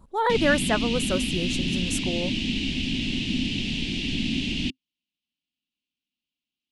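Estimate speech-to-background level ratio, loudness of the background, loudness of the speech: 0.5 dB, -27.0 LUFS, -26.5 LUFS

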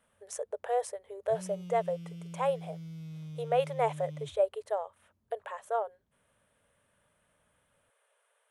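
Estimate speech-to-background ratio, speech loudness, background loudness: 10.5 dB, -33.5 LUFS, -44.0 LUFS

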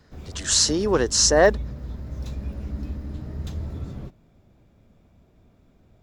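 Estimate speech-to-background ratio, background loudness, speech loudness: 15.5 dB, -34.5 LUFS, -19.0 LUFS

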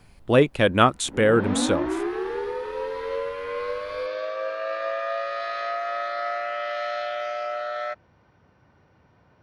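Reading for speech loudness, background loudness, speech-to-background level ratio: -21.0 LUFS, -29.0 LUFS, 8.0 dB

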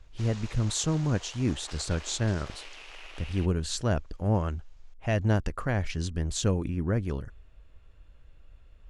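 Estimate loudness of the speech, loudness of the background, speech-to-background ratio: -29.5 LUFS, -46.0 LUFS, 16.5 dB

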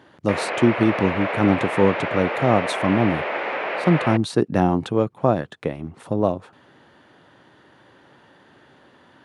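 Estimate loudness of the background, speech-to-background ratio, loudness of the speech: -26.0 LUFS, 4.0 dB, -22.0 LUFS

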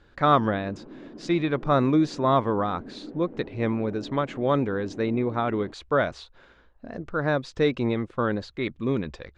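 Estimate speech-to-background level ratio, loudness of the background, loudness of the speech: 17.0 dB, -43.0 LUFS, -26.0 LUFS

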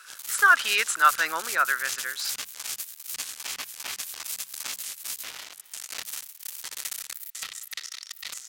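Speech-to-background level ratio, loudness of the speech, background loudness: 10.5 dB, -23.0 LUFS, -33.5 LUFS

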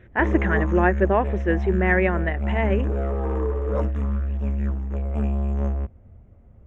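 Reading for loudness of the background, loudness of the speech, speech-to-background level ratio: -26.0 LUFS, -23.0 LUFS, 3.0 dB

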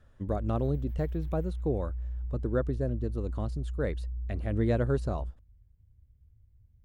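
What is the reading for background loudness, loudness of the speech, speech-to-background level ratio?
-38.0 LUFS, -33.0 LUFS, 5.0 dB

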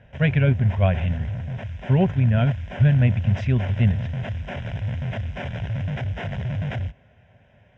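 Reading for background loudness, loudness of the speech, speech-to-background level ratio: -30.0 LUFS, -21.5 LUFS, 8.5 dB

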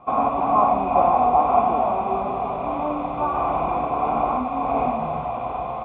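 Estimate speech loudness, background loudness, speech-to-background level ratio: -25.5 LUFS, -22.5 LUFS, -3.0 dB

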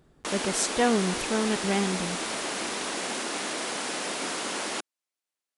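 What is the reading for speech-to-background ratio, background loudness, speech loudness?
2.5 dB, -30.5 LUFS, -28.0 LUFS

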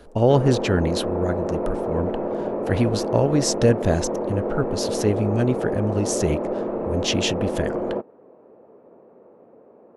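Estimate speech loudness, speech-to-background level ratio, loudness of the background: -24.0 LUFS, 2.5 dB, -26.5 LUFS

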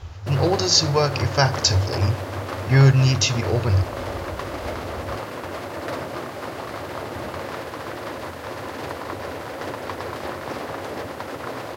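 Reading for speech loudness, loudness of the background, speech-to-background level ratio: -19.5 LUFS, -31.0 LUFS, 11.5 dB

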